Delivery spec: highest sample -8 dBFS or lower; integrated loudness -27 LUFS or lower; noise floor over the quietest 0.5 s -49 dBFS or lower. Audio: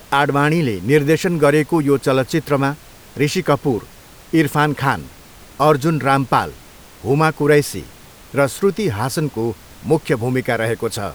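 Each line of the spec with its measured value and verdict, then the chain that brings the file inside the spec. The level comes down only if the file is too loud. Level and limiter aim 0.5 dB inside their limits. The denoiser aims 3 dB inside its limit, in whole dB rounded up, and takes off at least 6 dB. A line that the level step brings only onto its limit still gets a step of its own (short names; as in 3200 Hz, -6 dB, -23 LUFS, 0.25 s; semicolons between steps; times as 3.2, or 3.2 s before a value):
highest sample -1.5 dBFS: fail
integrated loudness -17.5 LUFS: fail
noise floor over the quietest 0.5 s -42 dBFS: fail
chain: gain -10 dB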